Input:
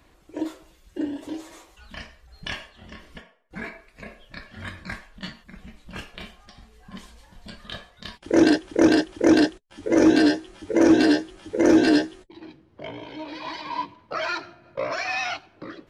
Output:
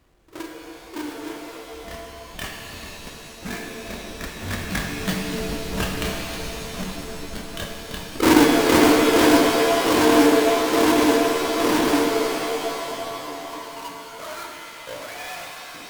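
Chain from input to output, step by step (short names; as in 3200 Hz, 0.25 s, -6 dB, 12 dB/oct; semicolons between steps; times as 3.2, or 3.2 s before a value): half-waves squared off; Doppler pass-by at 5.71, 11 m/s, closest 11 m; shimmer reverb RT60 3.2 s, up +7 st, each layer -2 dB, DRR 1.5 dB; gain +6 dB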